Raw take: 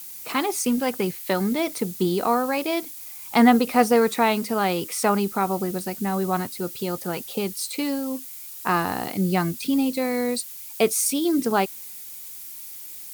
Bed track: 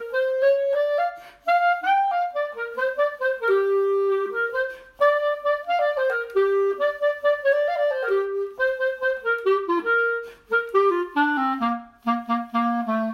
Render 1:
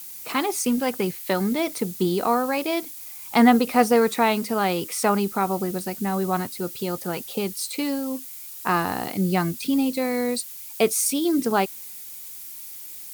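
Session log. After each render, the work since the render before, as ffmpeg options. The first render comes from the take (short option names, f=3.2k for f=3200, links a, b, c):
-af anull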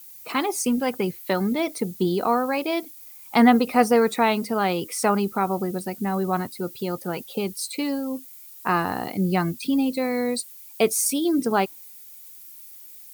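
-af "afftdn=nr=9:nf=-39"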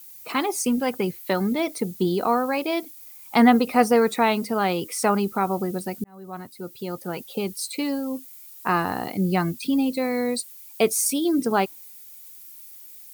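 -filter_complex "[0:a]asplit=2[a][b];[a]atrim=end=6.04,asetpts=PTS-STARTPTS,afade=t=out:st=6.036:d=0.004:c=hsin[c];[b]atrim=start=6.04,asetpts=PTS-STARTPTS,afade=t=in:d=1.78:c=qsin[d];[c][d]concat=n=2:v=0:a=1"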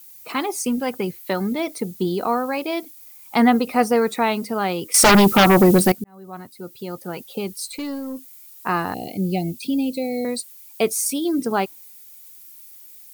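-filter_complex "[0:a]asettb=1/sr,asplit=3[a][b][c];[a]atrim=end=4.944[d];[b]atrim=start=4.94:end=5.92,asetpts=PTS-STARTPTS,afade=t=in:d=0.004:c=qsin,afade=t=out:st=0.976:d=0.004:c=qsin,aeval=exprs='0.398*sin(PI/2*4.47*val(0)/0.398)':c=same[e];[c]atrim=start=5.916[f];[d][e]acrossfade=d=0.004:c1=hsin:c2=qsin[g];[g][f]acrossfade=d=0.004:c1=qsin:c2=hsin,asplit=3[h][i][j];[h]afade=t=out:st=7.65:d=0.02[k];[i]aeval=exprs='(tanh(14.1*val(0)+0.15)-tanh(0.15))/14.1':c=same,afade=t=in:st=7.65:d=0.02,afade=t=out:st=8.25:d=0.02[l];[j]afade=t=in:st=8.25:d=0.02[m];[k][l][m]amix=inputs=3:normalize=0,asettb=1/sr,asplit=3[n][o][p];[n]atrim=end=8.944[q];[o]atrim=start=8.94:end=10.25,asetpts=PTS-STARTPTS,afade=t=in:d=0.004:c=qsin,afade=t=out:st=1.306:d=0.004:c=qsin,asuperstop=centerf=1300:order=12:qfactor=0.9[r];[p]atrim=start=10.246[s];[q][r]acrossfade=d=0.004:c1=hsin:c2=qsin[t];[t][s]acrossfade=d=0.004:c1=qsin:c2=hsin"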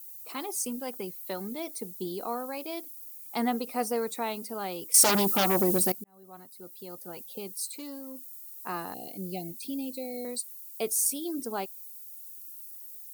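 -af "highpass=f=950:p=1,equalizer=f=1.9k:w=0.42:g=-14"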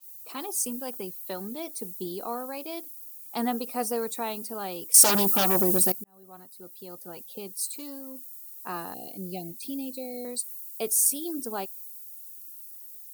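-af "bandreject=f=2.1k:w=10,adynamicequalizer=threshold=0.00562:dfrequency=6100:dqfactor=0.7:tfrequency=6100:tqfactor=0.7:attack=5:release=100:ratio=0.375:range=2.5:mode=boostabove:tftype=highshelf"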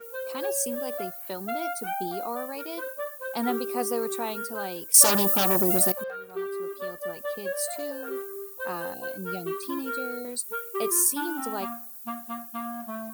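-filter_complex "[1:a]volume=-12.5dB[a];[0:a][a]amix=inputs=2:normalize=0"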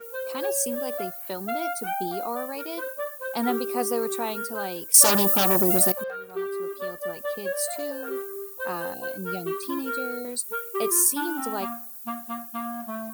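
-af "volume=2dB,alimiter=limit=-3dB:level=0:latency=1"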